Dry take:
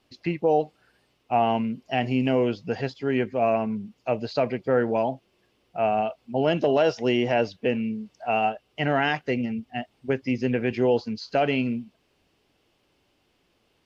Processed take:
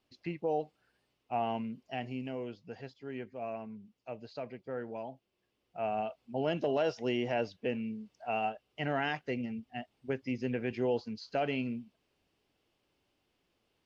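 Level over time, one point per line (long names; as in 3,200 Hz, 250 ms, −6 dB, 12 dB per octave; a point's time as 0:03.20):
0:01.81 −11 dB
0:02.32 −17 dB
0:05.12 −17 dB
0:06.02 −9.5 dB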